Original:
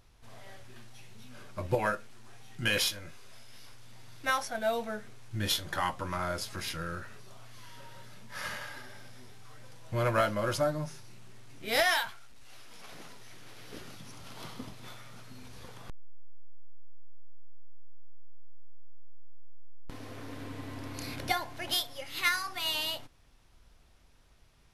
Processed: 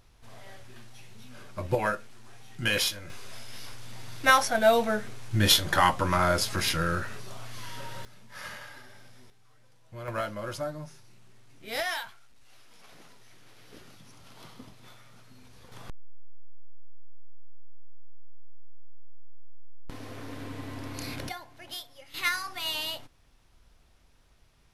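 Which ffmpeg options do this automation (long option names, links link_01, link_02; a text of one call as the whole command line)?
ffmpeg -i in.wav -af "asetnsamples=nb_out_samples=441:pad=0,asendcmd='3.1 volume volume 9.5dB;8.05 volume volume -3dB;9.3 volume volume -11dB;10.08 volume volume -5dB;15.72 volume volume 2.5dB;21.29 volume volume -9dB;22.14 volume volume 0dB',volume=2dB" out.wav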